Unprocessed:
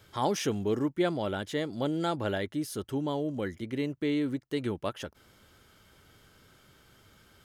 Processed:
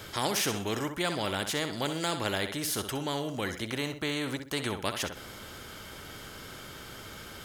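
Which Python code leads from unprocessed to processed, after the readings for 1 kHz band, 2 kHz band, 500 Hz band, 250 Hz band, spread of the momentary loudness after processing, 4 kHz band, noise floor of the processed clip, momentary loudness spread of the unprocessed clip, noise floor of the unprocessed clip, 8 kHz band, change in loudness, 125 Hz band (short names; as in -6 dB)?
+1.0 dB, +6.0 dB, -2.5 dB, -4.0 dB, 13 LU, +8.0 dB, -45 dBFS, 6 LU, -62 dBFS, +9.0 dB, 0.0 dB, -1.0 dB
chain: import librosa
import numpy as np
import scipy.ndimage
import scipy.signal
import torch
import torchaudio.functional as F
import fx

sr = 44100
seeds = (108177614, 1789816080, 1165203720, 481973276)

y = fx.room_flutter(x, sr, wall_m=10.9, rt60_s=0.29)
y = fx.spectral_comp(y, sr, ratio=2.0)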